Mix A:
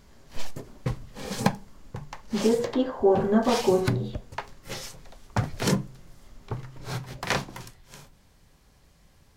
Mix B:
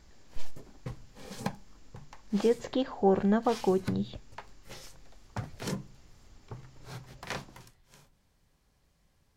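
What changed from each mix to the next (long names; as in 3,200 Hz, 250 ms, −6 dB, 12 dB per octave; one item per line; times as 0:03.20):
background −11.0 dB
reverb: off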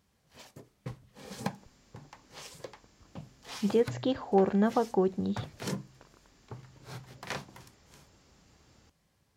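speech: entry +1.30 s
master: add high-pass filter 77 Hz 12 dB per octave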